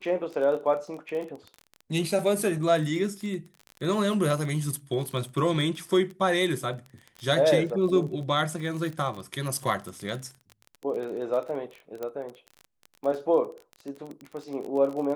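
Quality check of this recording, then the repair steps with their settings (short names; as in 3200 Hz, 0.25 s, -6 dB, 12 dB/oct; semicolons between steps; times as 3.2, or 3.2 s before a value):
crackle 29/s -33 dBFS
12.03 pop -21 dBFS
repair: de-click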